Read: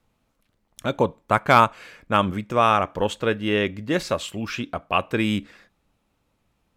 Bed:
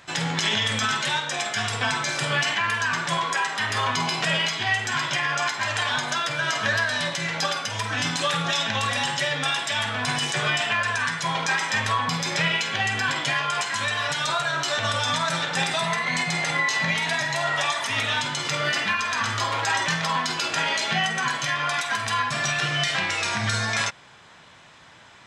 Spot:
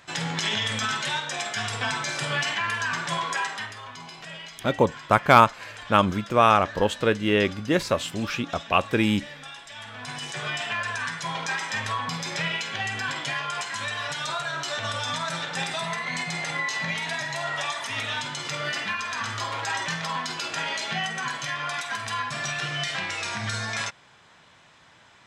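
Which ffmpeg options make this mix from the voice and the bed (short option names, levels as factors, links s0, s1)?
-filter_complex "[0:a]adelay=3800,volume=1.06[s0];[1:a]volume=2.66,afade=t=out:st=3.46:d=0.3:silence=0.211349,afade=t=in:st=9.72:d=1.05:silence=0.266073[s1];[s0][s1]amix=inputs=2:normalize=0"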